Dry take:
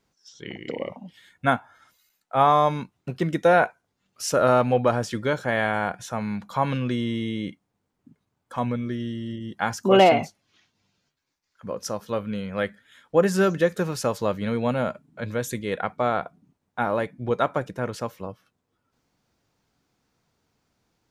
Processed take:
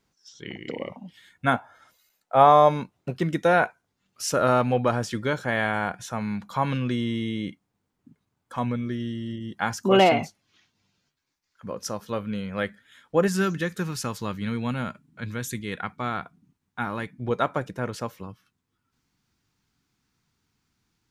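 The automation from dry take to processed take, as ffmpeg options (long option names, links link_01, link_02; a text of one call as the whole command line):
ffmpeg -i in.wav -af "asetnsamples=nb_out_samples=441:pad=0,asendcmd='1.54 equalizer g 5.5;3.14 equalizer g -3.5;13.28 equalizer g -14;17.2 equalizer g -3;18.23 equalizer g -14.5',equalizer=frequency=580:width_type=o:width=0.99:gain=-3.5" out.wav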